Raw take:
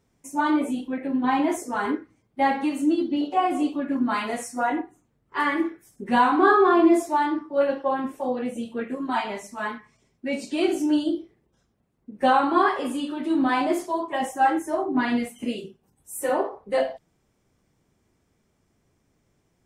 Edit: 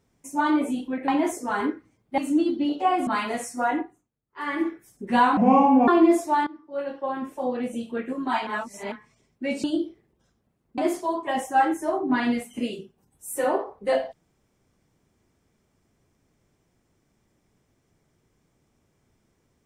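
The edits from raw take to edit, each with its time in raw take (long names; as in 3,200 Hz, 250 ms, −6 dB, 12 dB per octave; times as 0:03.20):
0:01.08–0:01.33: remove
0:02.43–0:02.70: remove
0:03.59–0:04.06: remove
0:04.77–0:05.65: duck −17 dB, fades 0.32 s
0:06.36–0:06.70: play speed 67%
0:07.29–0:08.39: fade in, from −19.5 dB
0:09.29–0:09.74: reverse
0:10.46–0:10.97: remove
0:12.11–0:13.63: remove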